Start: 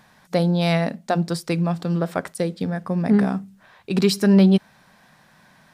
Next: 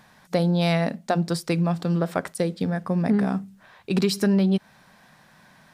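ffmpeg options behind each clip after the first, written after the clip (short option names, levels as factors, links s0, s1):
-af "acompressor=threshold=0.141:ratio=6"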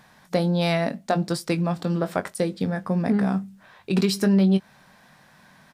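-filter_complex "[0:a]asplit=2[s0][s1];[s1]adelay=21,volume=0.299[s2];[s0][s2]amix=inputs=2:normalize=0"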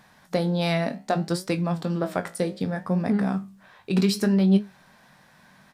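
-af "flanger=delay=9.5:depth=8.3:regen=76:speed=0.65:shape=triangular,volume=1.41"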